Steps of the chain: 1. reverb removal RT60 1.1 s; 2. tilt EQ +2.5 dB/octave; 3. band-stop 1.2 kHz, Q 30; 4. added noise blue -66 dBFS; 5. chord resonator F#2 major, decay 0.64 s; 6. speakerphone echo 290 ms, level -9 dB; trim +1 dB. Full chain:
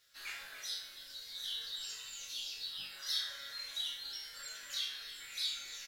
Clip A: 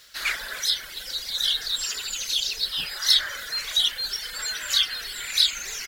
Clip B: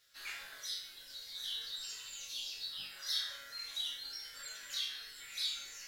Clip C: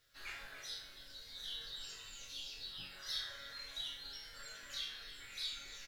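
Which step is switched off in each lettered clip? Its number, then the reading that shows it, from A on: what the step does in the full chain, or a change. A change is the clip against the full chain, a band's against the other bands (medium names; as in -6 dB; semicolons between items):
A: 5, loudness change +16.0 LU; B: 6, echo-to-direct -14.5 dB to none; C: 2, 500 Hz band +6.0 dB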